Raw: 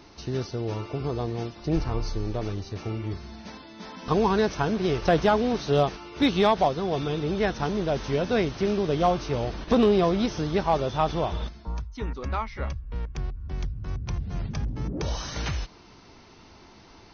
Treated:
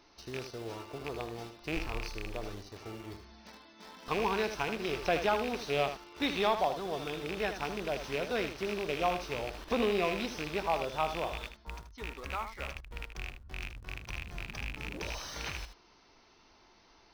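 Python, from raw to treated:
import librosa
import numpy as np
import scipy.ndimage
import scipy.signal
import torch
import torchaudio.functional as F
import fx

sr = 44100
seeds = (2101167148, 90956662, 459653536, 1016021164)

p1 = fx.rattle_buzz(x, sr, strikes_db=-26.0, level_db=-19.0)
p2 = fx.peak_eq(p1, sr, hz=120.0, db=-11.0, octaves=2.6)
p3 = fx.quant_dither(p2, sr, seeds[0], bits=6, dither='none')
p4 = p2 + (p3 * librosa.db_to_amplitude(-8.5))
p5 = p4 + 10.0 ** (-9.5 / 20.0) * np.pad(p4, (int(78 * sr / 1000.0), 0))[:len(p4)]
y = p5 * librosa.db_to_amplitude(-9.0)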